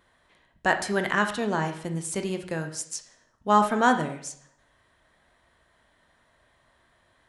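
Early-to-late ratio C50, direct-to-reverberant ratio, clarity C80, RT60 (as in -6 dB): 10.0 dB, 6.0 dB, 13.5 dB, 0.65 s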